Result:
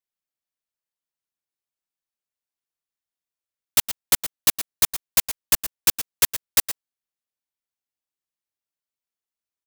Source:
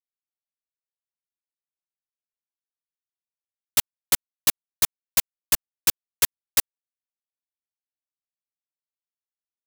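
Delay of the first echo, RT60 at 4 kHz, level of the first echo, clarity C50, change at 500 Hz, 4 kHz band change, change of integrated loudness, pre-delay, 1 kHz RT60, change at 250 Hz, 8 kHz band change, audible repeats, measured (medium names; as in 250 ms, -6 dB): 115 ms, no reverb, -12.0 dB, no reverb, +2.5 dB, +2.5 dB, +2.5 dB, no reverb, no reverb, +2.5 dB, +2.5 dB, 1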